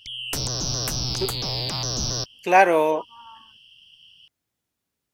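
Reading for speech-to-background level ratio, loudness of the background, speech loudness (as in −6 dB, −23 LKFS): 5.5 dB, −26.0 LKFS, −20.5 LKFS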